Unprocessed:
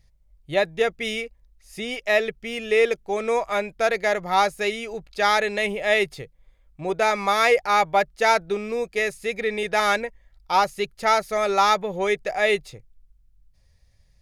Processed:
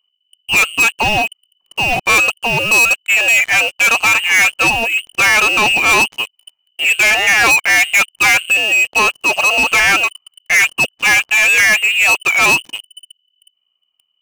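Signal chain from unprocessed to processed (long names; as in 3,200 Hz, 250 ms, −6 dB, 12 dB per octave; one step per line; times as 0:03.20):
voice inversion scrambler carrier 3,000 Hz
leveller curve on the samples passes 5
level −1.5 dB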